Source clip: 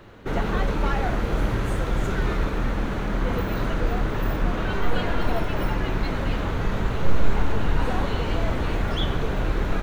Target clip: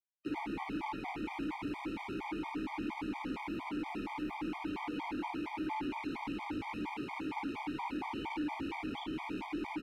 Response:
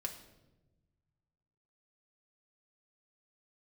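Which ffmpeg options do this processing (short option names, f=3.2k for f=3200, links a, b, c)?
-filter_complex "[0:a]acrusher=bits=5:mix=0:aa=0.000001,acrossover=split=110|1200[a][b][c];[a]acompressor=threshold=-30dB:ratio=4[d];[b]acompressor=threshold=-36dB:ratio=4[e];[c]acompressor=threshold=-39dB:ratio=4[f];[d][e][f]amix=inputs=3:normalize=0,asplit=3[g][h][i];[g]bandpass=f=300:t=q:w=8,volume=0dB[j];[h]bandpass=f=870:t=q:w=8,volume=-6dB[k];[i]bandpass=f=2.24k:t=q:w=8,volume=-9dB[l];[j][k][l]amix=inputs=3:normalize=0,equalizer=f=6.7k:t=o:w=0.47:g=-5,acontrast=85,lowshelf=f=470:g=-6.5,bandreject=f=1.5k:w=21,aecho=1:1:54|77:0.596|0.422,asoftclip=type=tanh:threshold=-38dB,afftfilt=real='re*gt(sin(2*PI*4.3*pts/sr)*(1-2*mod(floor(b*sr/1024/620),2)),0)':imag='im*gt(sin(2*PI*4.3*pts/sr)*(1-2*mod(floor(b*sr/1024/620),2)),0)':win_size=1024:overlap=0.75,volume=8dB"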